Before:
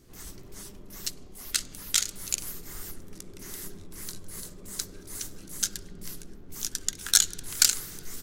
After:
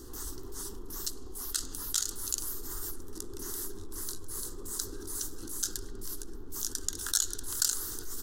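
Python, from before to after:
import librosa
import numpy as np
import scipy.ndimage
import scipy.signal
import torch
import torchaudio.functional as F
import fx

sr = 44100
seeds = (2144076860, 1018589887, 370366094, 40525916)

y = fx.fixed_phaser(x, sr, hz=620.0, stages=6)
y = fx.env_flatten(y, sr, amount_pct=50)
y = F.gain(torch.from_numpy(y), -8.0).numpy()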